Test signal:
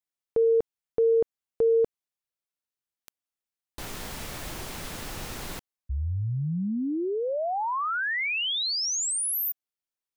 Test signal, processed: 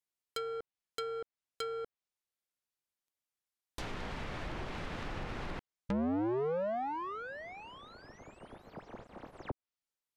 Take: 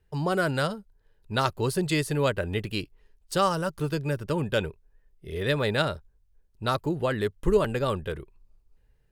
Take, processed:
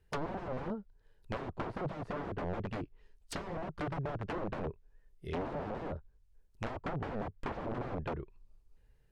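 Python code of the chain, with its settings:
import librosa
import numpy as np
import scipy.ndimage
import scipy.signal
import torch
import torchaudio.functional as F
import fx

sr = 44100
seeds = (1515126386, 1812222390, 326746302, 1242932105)

y = (np.mod(10.0 ** (26.5 / 20.0) * x + 1.0, 2.0) - 1.0) / 10.0 ** (26.5 / 20.0)
y = fx.env_lowpass_down(y, sr, base_hz=740.0, full_db=-28.5)
y = y * librosa.db_to_amplitude(-1.5)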